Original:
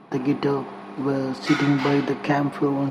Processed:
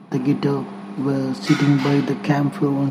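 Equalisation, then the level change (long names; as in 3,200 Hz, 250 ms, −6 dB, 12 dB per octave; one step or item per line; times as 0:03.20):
parametric band 180 Hz +12 dB 1 octave
high-shelf EQ 5,100 Hz +10 dB
−1.5 dB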